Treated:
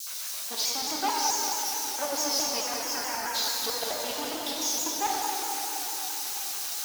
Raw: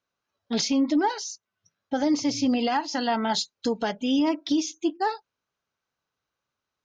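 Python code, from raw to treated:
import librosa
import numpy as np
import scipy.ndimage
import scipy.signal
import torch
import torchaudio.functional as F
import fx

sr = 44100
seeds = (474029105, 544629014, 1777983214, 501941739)

y = x + 0.5 * 10.0 ** (-27.0 / 20.0) * np.diff(np.sign(x), prepend=np.sign(x[:1]))
y = fx.highpass(y, sr, hz=97.0, slope=24, at=(0.59, 1.0))
y = 10.0 ** (-27.5 / 20.0) * np.tanh(y / 10.0 ** (-27.5 / 20.0))
y = fx.filter_lfo_highpass(y, sr, shape='square', hz=7.3, low_hz=620.0, high_hz=4900.0, q=1.4)
y = fx.fixed_phaser(y, sr, hz=1500.0, stages=4, at=(2.61, 3.34))
y = fx.echo_split(y, sr, split_hz=440.0, low_ms=399, high_ms=90, feedback_pct=52, wet_db=-13.5)
y = fx.rev_plate(y, sr, seeds[0], rt60_s=4.3, hf_ratio=0.9, predelay_ms=0, drr_db=-4.0)
y = fx.vibrato_shape(y, sr, shape='saw_down', rate_hz=4.6, depth_cents=100.0)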